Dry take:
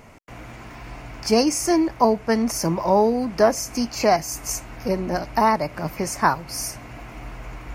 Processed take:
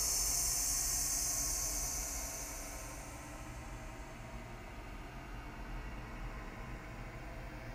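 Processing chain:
extreme stretch with random phases 29×, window 0.10 s, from 0:04.51
level −8.5 dB

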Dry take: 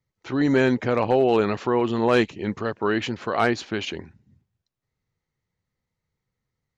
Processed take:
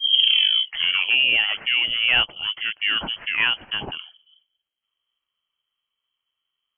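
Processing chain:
turntable start at the beginning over 1.19 s
voice inversion scrambler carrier 3,200 Hz

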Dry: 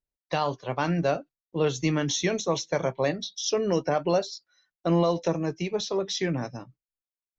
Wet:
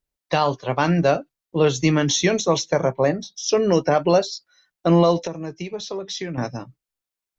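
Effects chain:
0:02.73–0:03.49: parametric band 3,500 Hz −14 dB 1 octave
0:05.19–0:06.38: downward compressor 4 to 1, threshold −35 dBFS, peak gain reduction 13 dB
level +7 dB

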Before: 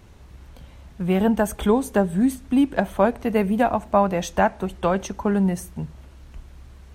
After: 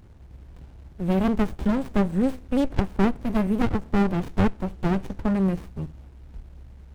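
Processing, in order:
Butterworth band-reject 1,100 Hz, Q 5.3
windowed peak hold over 65 samples

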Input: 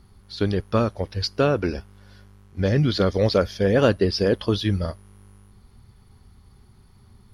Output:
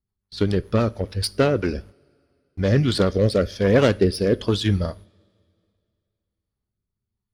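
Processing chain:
phase distortion by the signal itself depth 0.14 ms
noise gate −41 dBFS, range −33 dB
rotating-speaker cabinet horn 7 Hz, later 1.1 Hz, at 0:01.13
coupled-rooms reverb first 0.38 s, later 2.5 s, from −21 dB, DRR 18 dB
level +3 dB

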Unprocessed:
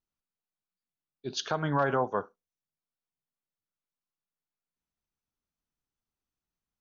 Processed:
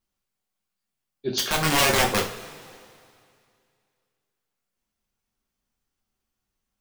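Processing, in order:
wrap-around overflow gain 22 dB
coupled-rooms reverb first 0.34 s, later 2.4 s, from −19 dB, DRR −0.5 dB
level +6 dB

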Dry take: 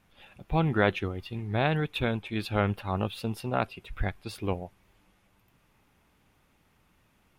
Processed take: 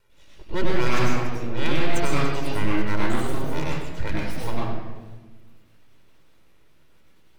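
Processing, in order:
pitch shifter swept by a sawtooth +5 semitones, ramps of 1,260 ms
rotating-speaker cabinet horn 0.9 Hz, later 5 Hz, at 0:04.67
full-wave rectification
convolution reverb RT60 1.3 s, pre-delay 96 ms, DRR −4 dB
boost into a limiter +9 dB
level −7 dB

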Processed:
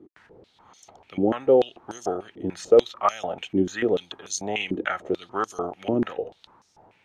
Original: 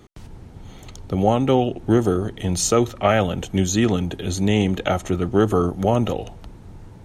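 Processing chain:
band-pass on a step sequencer 6.8 Hz 320–5,700 Hz
level +6.5 dB

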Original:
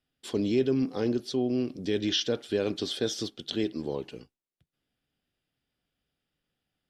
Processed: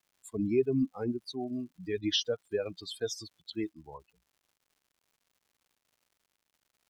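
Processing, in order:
spectral dynamics exaggerated over time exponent 3
surface crackle 210 per second −60 dBFS
level +2 dB

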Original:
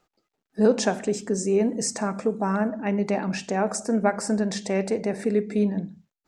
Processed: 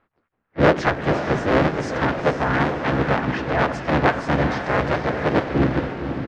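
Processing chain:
sub-harmonics by changed cycles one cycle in 3, inverted
low-pass that shuts in the quiet parts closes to 2,700 Hz, open at −20 dBFS
parametric band 1,600 Hz +6 dB 0.79 octaves
feedback delay with all-pass diffusion 469 ms, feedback 47%, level −7 dB
pitch-shifted copies added −3 semitones −10 dB, +3 semitones −6 dB
high-frequency loss of the air 250 metres
level +2 dB

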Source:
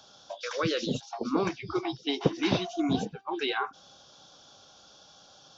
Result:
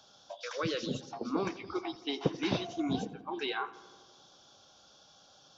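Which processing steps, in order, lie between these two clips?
0:01.48–0:02.13: parametric band 130 Hz −13 dB 0.61 octaves
feedback echo with a low-pass in the loop 86 ms, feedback 74%, low-pass 2,600 Hz, level −17.5 dB
level −5 dB

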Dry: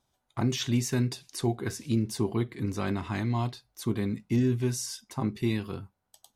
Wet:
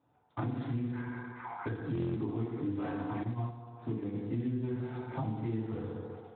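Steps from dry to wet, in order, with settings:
running median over 15 samples
0:00.92–0:01.66: elliptic band-pass filter 930–2,400 Hz, stop band 40 dB
0:04.70–0:05.27: comb filter 1.4 ms, depth 70%
feedback delay network reverb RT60 1.4 s, low-frequency decay 0.7×, high-frequency decay 0.4×, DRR −9 dB
downward compressor 5 to 1, threshold −34 dBFS, peak gain reduction 18.5 dB
0:03.23–0:04.14: noise gate −34 dBFS, range −9 dB
buffer that repeats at 0:01.93, samples 1,024, times 9
Speex 11 kbit/s 8,000 Hz

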